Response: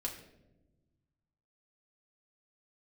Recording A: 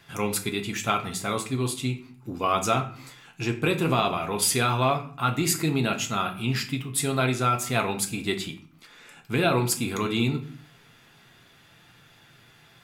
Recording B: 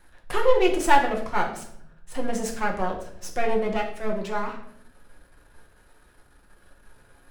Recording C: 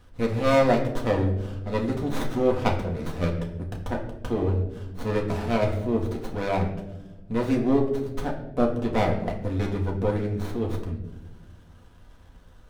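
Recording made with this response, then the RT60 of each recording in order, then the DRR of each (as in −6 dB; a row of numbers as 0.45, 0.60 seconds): C; 0.50, 0.70, 1.0 seconds; 3.5, −1.0, −0.5 decibels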